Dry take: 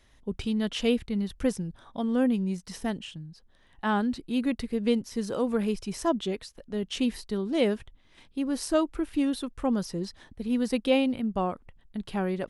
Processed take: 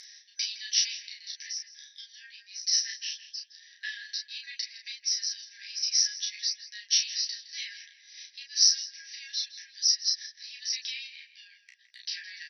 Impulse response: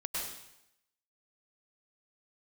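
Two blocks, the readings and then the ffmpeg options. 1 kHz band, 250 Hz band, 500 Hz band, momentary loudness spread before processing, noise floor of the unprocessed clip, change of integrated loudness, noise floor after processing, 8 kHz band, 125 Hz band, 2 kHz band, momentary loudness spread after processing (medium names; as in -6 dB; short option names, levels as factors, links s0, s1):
under -40 dB, under -40 dB, under -40 dB, 11 LU, -60 dBFS, +0.5 dB, -61 dBFS, +15.5 dB, under -40 dB, -1.5 dB, 20 LU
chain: -filter_complex "[0:a]acompressor=threshold=0.0355:ratio=5,afftfilt=real='re*between(b*sr/4096,1600,6000)':imag='im*between(b*sr/4096,1600,6000)':win_size=4096:overlap=0.75,adynamicequalizer=threshold=0.001:dfrequency=4000:dqfactor=0.77:tfrequency=4000:tqfactor=0.77:attack=5:release=100:ratio=0.375:range=2:mode=cutabove:tftype=bell,acompressor=mode=upward:threshold=0.00112:ratio=2.5,aexciter=amount=15.9:drive=2:freq=4700,flanger=delay=8.6:depth=6.6:regen=-5:speed=0.21:shape=triangular,asplit=2[s0][s1];[s1]adelay=33,volume=0.708[s2];[s0][s2]amix=inputs=2:normalize=0,asplit=2[s3][s4];[s4]adelay=164,lowpass=f=2200:p=1,volume=0.355,asplit=2[s5][s6];[s6]adelay=164,lowpass=f=2200:p=1,volume=0.51,asplit=2[s7][s8];[s8]adelay=164,lowpass=f=2200:p=1,volume=0.51,asplit=2[s9][s10];[s10]adelay=164,lowpass=f=2200:p=1,volume=0.51,asplit=2[s11][s12];[s12]adelay=164,lowpass=f=2200:p=1,volume=0.51,asplit=2[s13][s14];[s14]adelay=164,lowpass=f=2200:p=1,volume=0.51[s15];[s3][s5][s7][s9][s11][s13][s15]amix=inputs=7:normalize=0,volume=2.37"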